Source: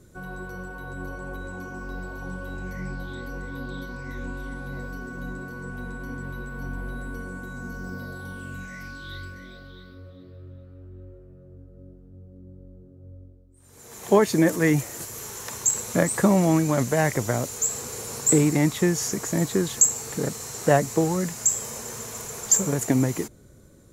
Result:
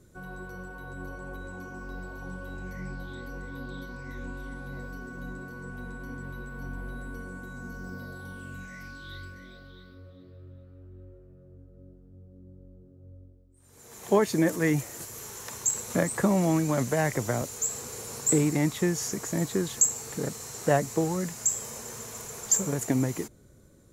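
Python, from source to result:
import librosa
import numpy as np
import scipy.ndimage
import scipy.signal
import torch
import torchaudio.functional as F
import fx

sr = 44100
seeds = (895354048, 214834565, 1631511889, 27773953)

y = fx.band_squash(x, sr, depth_pct=40, at=(15.9, 17.42))
y = y * 10.0 ** (-4.5 / 20.0)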